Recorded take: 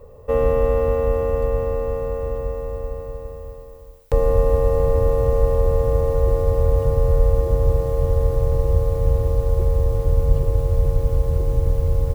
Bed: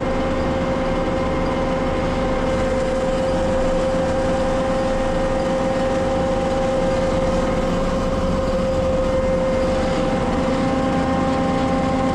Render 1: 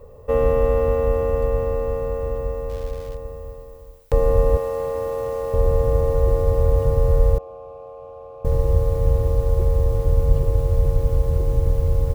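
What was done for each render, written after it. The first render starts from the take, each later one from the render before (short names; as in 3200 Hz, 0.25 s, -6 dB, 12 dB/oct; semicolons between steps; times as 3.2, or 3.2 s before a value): 2.69–3.17 switching dead time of 0.14 ms; 4.57–5.54 HPF 630 Hz 6 dB/oct; 7.38–8.45 vowel filter a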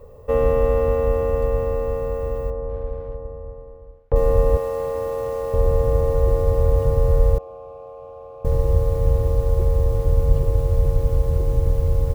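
2.5–4.16 LPF 1200 Hz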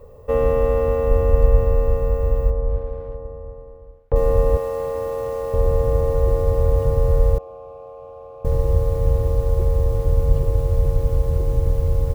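1.11–2.79 low shelf 96 Hz +11.5 dB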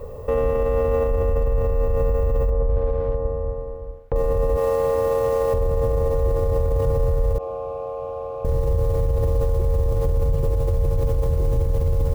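in parallel at +1 dB: negative-ratio compressor -21 dBFS; on the sum: limiter -13 dBFS, peak gain reduction 10.5 dB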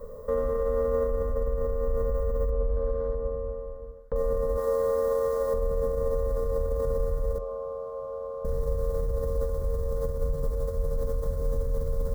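fixed phaser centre 520 Hz, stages 8; flange 0.17 Hz, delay 8.7 ms, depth 7.5 ms, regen -79%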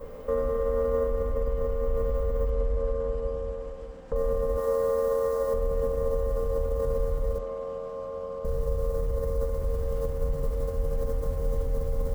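add bed -29 dB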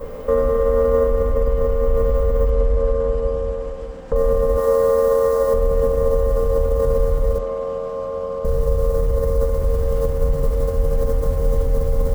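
gain +9.5 dB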